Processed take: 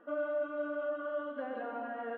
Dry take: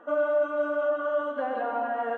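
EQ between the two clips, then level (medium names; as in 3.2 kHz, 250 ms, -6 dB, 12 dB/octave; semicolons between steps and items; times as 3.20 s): distance through air 210 m; peaking EQ 850 Hz -9 dB 1.3 oct; -3.5 dB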